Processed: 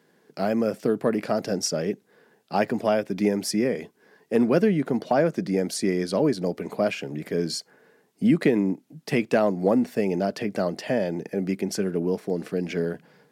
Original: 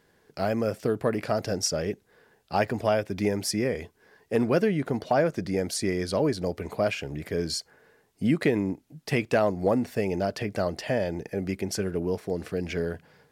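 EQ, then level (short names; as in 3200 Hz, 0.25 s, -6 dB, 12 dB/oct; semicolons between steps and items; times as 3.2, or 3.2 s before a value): HPF 180 Hz 24 dB/oct; low shelf 240 Hz +11 dB; 0.0 dB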